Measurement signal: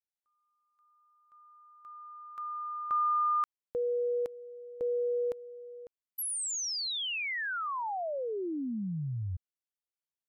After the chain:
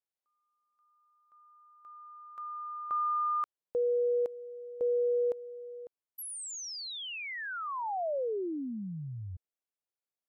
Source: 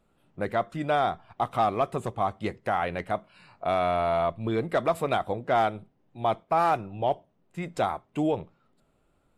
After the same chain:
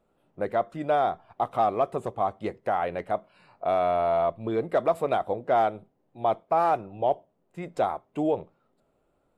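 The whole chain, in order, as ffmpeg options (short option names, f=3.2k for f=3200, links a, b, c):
-af "equalizer=f=550:w=0.62:g=9,volume=-6.5dB"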